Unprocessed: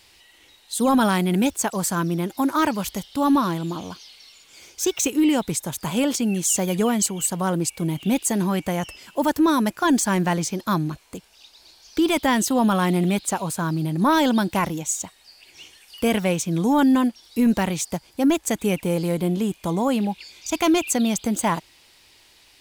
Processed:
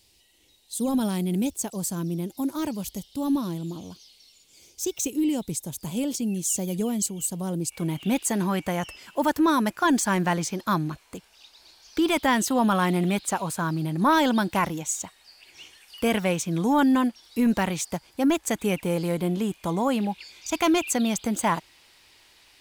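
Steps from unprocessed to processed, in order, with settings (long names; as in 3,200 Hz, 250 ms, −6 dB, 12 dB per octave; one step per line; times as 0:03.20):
parametric band 1,400 Hz −14.5 dB 2 octaves, from 0:07.72 +3.5 dB
level −3.5 dB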